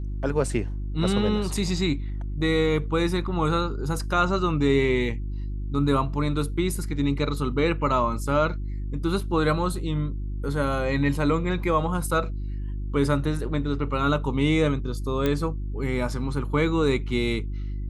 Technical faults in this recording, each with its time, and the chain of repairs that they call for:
hum 50 Hz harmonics 7 -30 dBFS
15.26 s: pop -12 dBFS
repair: de-click; de-hum 50 Hz, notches 7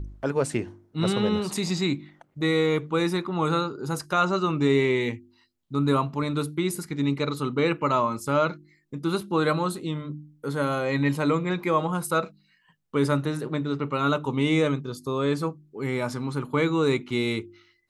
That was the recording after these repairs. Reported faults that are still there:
nothing left

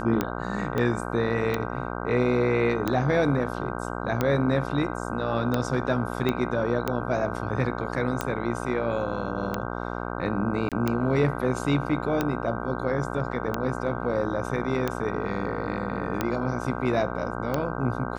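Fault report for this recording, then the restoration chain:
buzz 60 Hz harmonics 26 -32 dBFS
tick 45 rpm -11 dBFS
0.78 s: pop -15 dBFS
6.29 s: pop -12 dBFS
10.69–10.72 s: dropout 27 ms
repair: de-click; de-hum 60 Hz, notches 26; interpolate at 10.69 s, 27 ms

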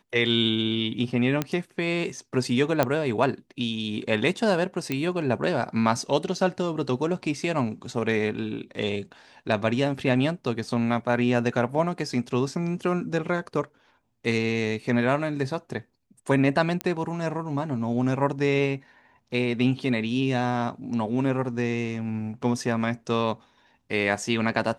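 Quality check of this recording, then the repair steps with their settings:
1.42 s: pop -11 dBFS
2.83 s: pop -8 dBFS
4.92 s: pop -13 dBFS
16.81 s: pop -12 dBFS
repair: de-click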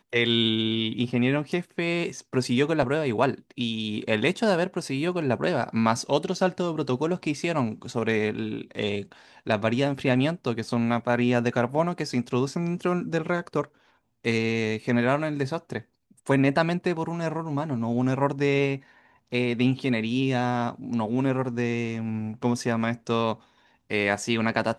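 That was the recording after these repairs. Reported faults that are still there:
nothing left

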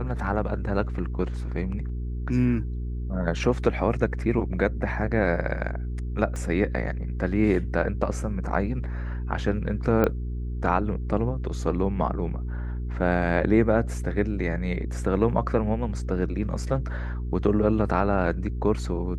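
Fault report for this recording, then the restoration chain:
hum 60 Hz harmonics 7 -30 dBFS
6.36 s: pop -23 dBFS
10.04 s: pop -11 dBFS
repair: de-click; de-hum 60 Hz, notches 7

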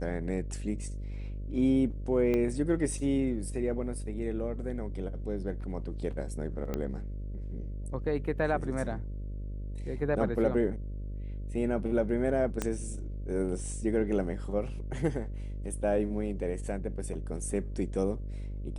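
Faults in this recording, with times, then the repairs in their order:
buzz 50 Hz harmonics 12 -37 dBFS
2.34 s: pop -19 dBFS
6.74 s: pop -20 dBFS
12.62 s: pop -16 dBFS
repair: de-click; de-hum 50 Hz, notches 12

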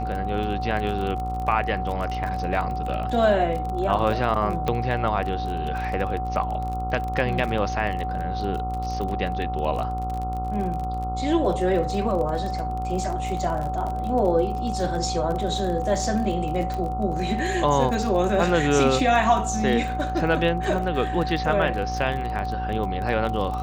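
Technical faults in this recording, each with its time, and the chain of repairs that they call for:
buzz 60 Hz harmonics 23 -30 dBFS
crackle 33 per s -29 dBFS
whine 750 Hz -28 dBFS
4.68 s: pop -12 dBFS
16.74 s: pop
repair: de-click; de-hum 60 Hz, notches 23; band-stop 750 Hz, Q 30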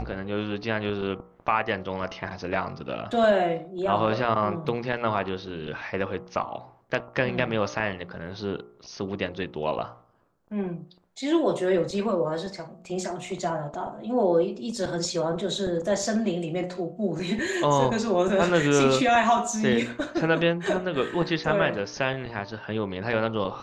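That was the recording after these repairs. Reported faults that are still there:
4.68 s: pop
16.74 s: pop

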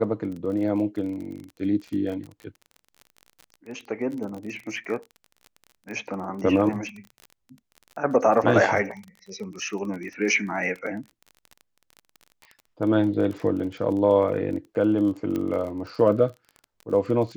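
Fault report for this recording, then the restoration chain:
crackle 30 per s -33 dBFS
15.36 s: pop -17 dBFS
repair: de-click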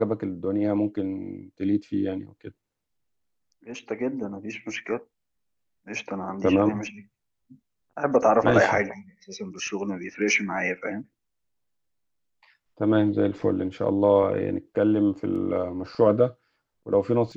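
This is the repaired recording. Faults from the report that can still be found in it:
15.36 s: pop

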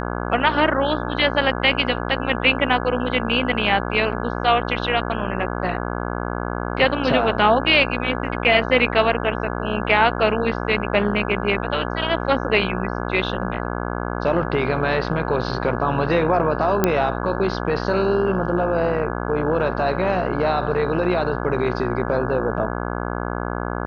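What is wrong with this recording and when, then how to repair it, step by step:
buzz 60 Hz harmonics 28 -26 dBFS
16.84 s: pop -3 dBFS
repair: de-click; de-hum 60 Hz, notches 28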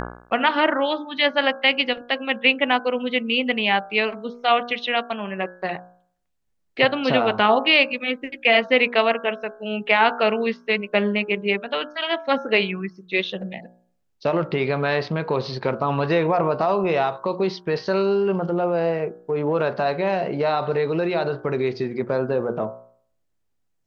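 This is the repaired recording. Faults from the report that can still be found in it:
nothing left

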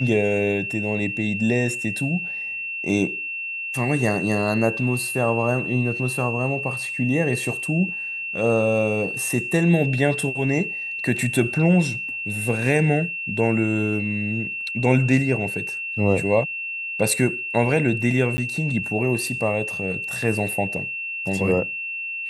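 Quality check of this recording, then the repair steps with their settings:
whine 2.7 kHz -27 dBFS
18.37–18.38 s: dropout 10 ms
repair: band-stop 2.7 kHz, Q 30; interpolate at 18.37 s, 10 ms

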